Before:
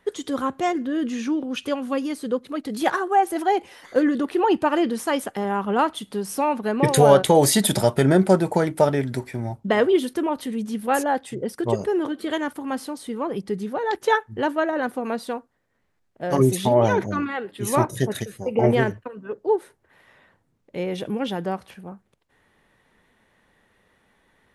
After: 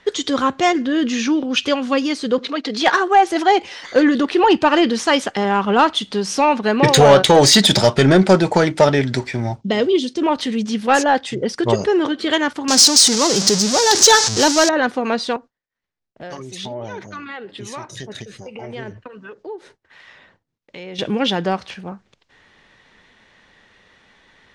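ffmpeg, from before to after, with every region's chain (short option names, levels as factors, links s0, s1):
-filter_complex "[0:a]asettb=1/sr,asplit=3[s0][s1][s2];[s0]atrim=end=2.384[s3];[s1]atrim=start=2.38:end=2.93,asetpts=PTS-STARTPTS,afade=t=in:d=0.004:c=qsin,afade=t=out:st=0.546:d=0.004:c=qsin,acrossover=split=250 6500:gain=0.2 1 0.224[s4][s5][s6];[s4][s5][s6]amix=inputs=3:normalize=0,aecho=1:1:4.3:0.33,atrim=end_sample=24255,acompressor=mode=upward:threshold=0.0316:ratio=2.5:attack=3.2:release=140:knee=2.83:detection=peak[s7];[s2]atrim=start=2.926[s8];[s3][s7]acrossfade=d=0.004:c1=hsin:c2=qsin[s9];[s9][s8]acrossfade=d=0.004:c1=qsin:c2=hsin,asettb=1/sr,asplit=3[s10][s11][s12];[s10]atrim=end=9.614[s13];[s11]atrim=start=9.61:end=10.22,asetpts=PTS-STARTPTS,afade=t=in:d=0.004:c=qsin,afade=t=out:st=0.606:d=0.004:c=qsin,highpass=120,lowpass=7800,equalizer=f=1300:w=0.6:g=-15,bandreject=f=1700:w=20[s14];[s12]atrim=start=10.216[s15];[s13][s14]acrossfade=d=0.004:c1=hsin:c2=qsin[s16];[s16][s15]acrossfade=d=0.004:c1=qsin:c2=hsin,asettb=1/sr,asplit=3[s17][s18][s19];[s17]atrim=end=12.684[s20];[s18]atrim=start=12.68:end=14.69,asetpts=PTS-STARTPTS,afade=t=in:d=0.004:c=qsin,afade=t=out:st=2.006:d=0.004:c=qsin,aeval=exprs='val(0)+0.5*0.0473*sgn(val(0))':c=same,highpass=98,highshelf=f=4000:t=q:w=1.5:g=14[s21];[s19]atrim=start=14.686[s22];[s20][s21]acrossfade=d=0.004:c1=hsin:c2=qsin[s23];[s23][s22]acrossfade=d=0.004:c1=qsin:c2=hsin,asettb=1/sr,asplit=3[s24][s25][s26];[s24]atrim=end=15.364[s27];[s25]atrim=start=15.36:end=20.99,asetpts=PTS-STARTPTS,afade=t=in:d=0.004:c=qsin,afade=t=out:st=5.626:d=0.004:c=qsin,acompressor=threshold=0.0126:ratio=3:attack=3.2:release=140:knee=1:detection=peak,agate=range=0.0224:threshold=0.00112:ratio=3:release=100:detection=peak,acrossover=split=830[s28][s29];[s28]aeval=exprs='val(0)*(1-0.5/2+0.5/2*cos(2*PI*1.4*n/s))':c=same[s30];[s29]aeval=exprs='val(0)*(1-0.5/2-0.5/2*cos(2*PI*1.4*n/s))':c=same[s31];[s30][s31]amix=inputs=2:normalize=0[s32];[s26]atrim=start=20.986[s33];[s27][s32]acrossfade=d=0.004:c1=hsin:c2=qsin[s34];[s34][s33]acrossfade=d=0.004:c1=qsin:c2=hsin,lowpass=f=6000:w=0.5412,lowpass=f=6000:w=1.3066,highshelf=f=2100:g=12,acontrast=82,volume=0.891"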